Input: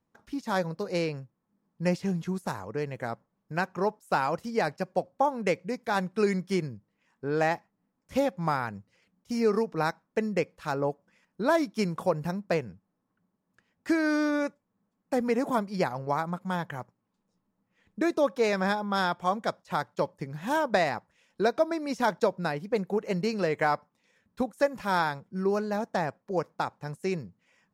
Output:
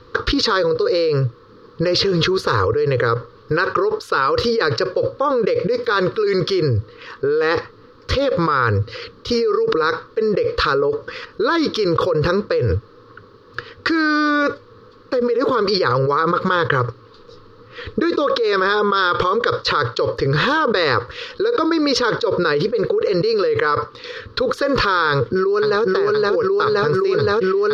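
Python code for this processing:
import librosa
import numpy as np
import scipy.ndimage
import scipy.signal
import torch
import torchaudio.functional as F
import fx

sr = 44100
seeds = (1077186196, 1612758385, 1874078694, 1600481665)

y = fx.echo_throw(x, sr, start_s=25.1, length_s=0.73, ms=520, feedback_pct=70, wet_db=-1.0)
y = fx.curve_eq(y, sr, hz=(120.0, 180.0, 480.0, 700.0, 1200.0, 2200.0, 4400.0, 7900.0), db=(0, -21, 8, -25, 6, -8, 6, -28))
y = fx.env_flatten(y, sr, amount_pct=100)
y = F.gain(torch.from_numpy(y), -2.5).numpy()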